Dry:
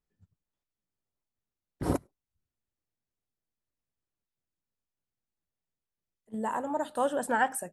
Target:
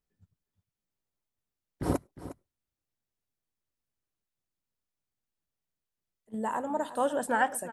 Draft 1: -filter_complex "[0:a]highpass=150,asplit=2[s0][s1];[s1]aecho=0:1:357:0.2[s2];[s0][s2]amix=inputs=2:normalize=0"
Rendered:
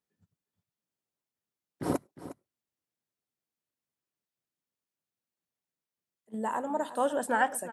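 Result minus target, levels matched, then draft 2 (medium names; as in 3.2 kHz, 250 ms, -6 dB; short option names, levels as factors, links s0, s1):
125 Hz band -5.0 dB
-filter_complex "[0:a]asplit=2[s0][s1];[s1]aecho=0:1:357:0.2[s2];[s0][s2]amix=inputs=2:normalize=0"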